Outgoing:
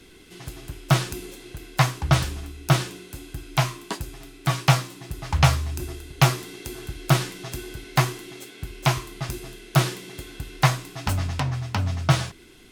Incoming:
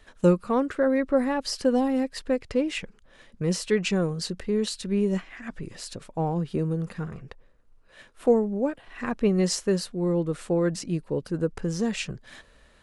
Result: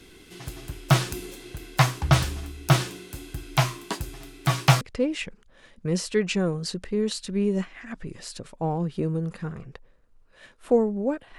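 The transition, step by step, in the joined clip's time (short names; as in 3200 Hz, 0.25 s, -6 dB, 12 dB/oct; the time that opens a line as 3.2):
outgoing
4.81 switch to incoming from 2.37 s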